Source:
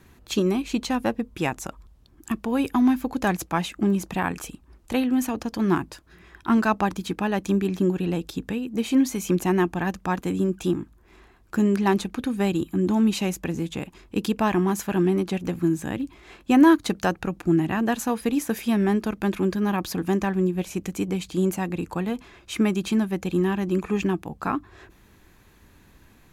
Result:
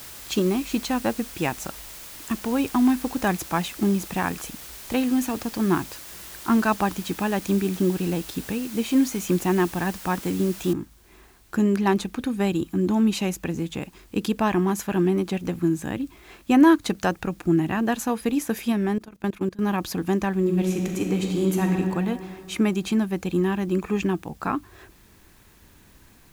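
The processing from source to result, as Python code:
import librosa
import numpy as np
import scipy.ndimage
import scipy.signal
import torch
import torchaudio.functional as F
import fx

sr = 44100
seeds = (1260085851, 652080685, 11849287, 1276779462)

y = fx.noise_floor_step(x, sr, seeds[0], at_s=10.73, before_db=-41, after_db=-60, tilt_db=0.0)
y = fx.level_steps(y, sr, step_db=23, at=(18.72, 19.59))
y = fx.reverb_throw(y, sr, start_s=20.38, length_s=1.34, rt60_s=2.6, drr_db=0.5)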